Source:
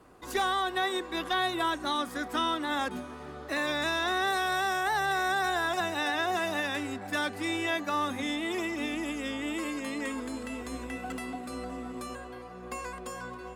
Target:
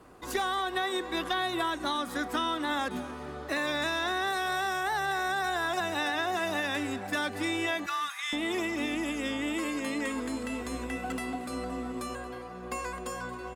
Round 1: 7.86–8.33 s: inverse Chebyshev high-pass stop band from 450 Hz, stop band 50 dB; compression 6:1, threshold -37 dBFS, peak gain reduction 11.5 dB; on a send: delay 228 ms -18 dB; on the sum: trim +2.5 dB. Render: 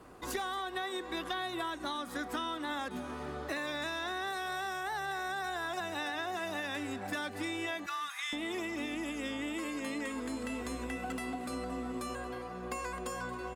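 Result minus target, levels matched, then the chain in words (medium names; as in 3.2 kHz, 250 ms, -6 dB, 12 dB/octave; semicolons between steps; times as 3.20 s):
compression: peak gain reduction +6.5 dB
7.86–8.33 s: inverse Chebyshev high-pass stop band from 450 Hz, stop band 50 dB; compression 6:1, threshold -29 dBFS, peak gain reduction 5 dB; on a send: delay 228 ms -18 dB; on the sum: trim +2.5 dB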